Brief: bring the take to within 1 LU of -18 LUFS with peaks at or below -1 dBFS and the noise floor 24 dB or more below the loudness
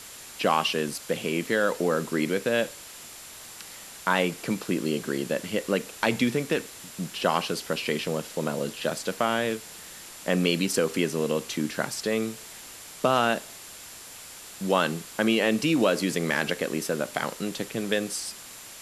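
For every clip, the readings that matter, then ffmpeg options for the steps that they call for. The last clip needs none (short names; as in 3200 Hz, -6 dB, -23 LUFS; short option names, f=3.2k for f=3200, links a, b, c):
steady tone 7300 Hz; tone level -51 dBFS; noise floor -44 dBFS; noise floor target -51 dBFS; loudness -27.0 LUFS; peak -8.0 dBFS; loudness target -18.0 LUFS
-> -af "bandreject=f=7.3k:w=30"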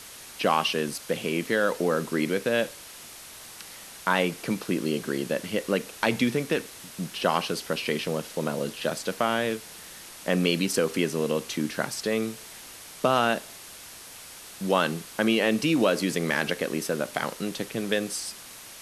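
steady tone none; noise floor -45 dBFS; noise floor target -51 dBFS
-> -af "afftdn=nr=6:nf=-45"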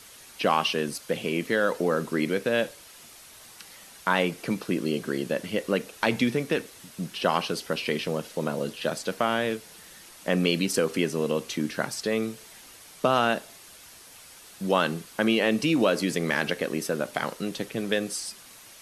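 noise floor -49 dBFS; noise floor target -51 dBFS
-> -af "afftdn=nr=6:nf=-49"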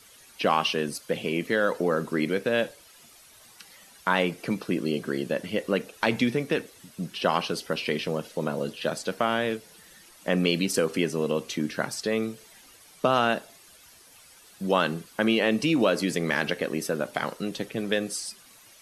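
noise floor -53 dBFS; loudness -27.5 LUFS; peak -8.0 dBFS; loudness target -18.0 LUFS
-> -af "volume=9.5dB,alimiter=limit=-1dB:level=0:latency=1"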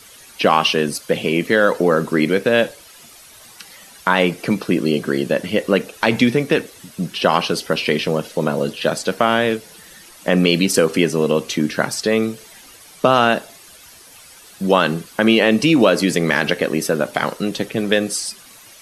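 loudness -18.0 LUFS; peak -1.0 dBFS; noise floor -44 dBFS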